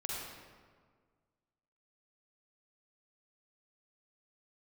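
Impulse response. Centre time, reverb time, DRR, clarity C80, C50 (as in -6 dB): 107 ms, 1.7 s, -4.0 dB, 0.0 dB, -3.0 dB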